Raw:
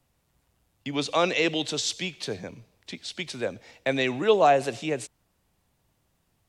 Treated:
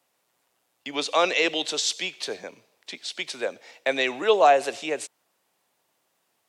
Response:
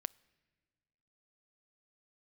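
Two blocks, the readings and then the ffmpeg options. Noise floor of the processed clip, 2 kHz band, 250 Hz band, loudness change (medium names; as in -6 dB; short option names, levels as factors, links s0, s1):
-73 dBFS, +3.0 dB, -4.5 dB, +1.5 dB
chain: -af "highpass=430,volume=1.41"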